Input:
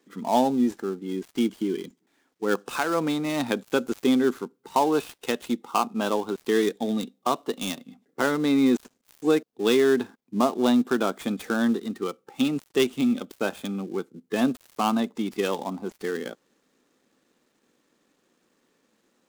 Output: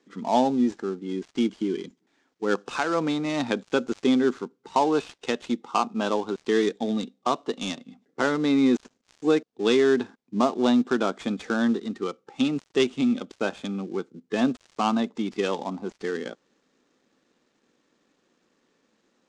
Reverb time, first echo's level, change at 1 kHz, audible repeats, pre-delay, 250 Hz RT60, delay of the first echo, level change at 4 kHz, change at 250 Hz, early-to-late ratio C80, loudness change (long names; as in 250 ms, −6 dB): no reverb audible, no echo audible, 0.0 dB, no echo audible, no reverb audible, no reverb audible, no echo audible, 0.0 dB, 0.0 dB, no reverb audible, 0.0 dB